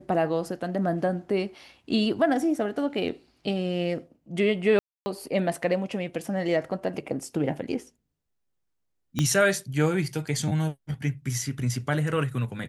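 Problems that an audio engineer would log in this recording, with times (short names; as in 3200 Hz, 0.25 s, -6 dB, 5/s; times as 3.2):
4.79–5.06 gap 0.27 s
9.19 pop -12 dBFS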